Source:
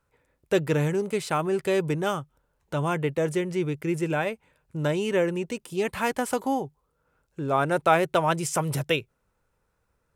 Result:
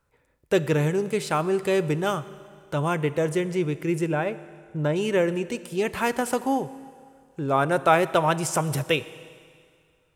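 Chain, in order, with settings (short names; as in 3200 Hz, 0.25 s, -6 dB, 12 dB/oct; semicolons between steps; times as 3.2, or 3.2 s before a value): 4.06–4.96 high shelf 2900 Hz -11.5 dB; Schroeder reverb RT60 2.1 s, combs from 26 ms, DRR 15 dB; gain +1.5 dB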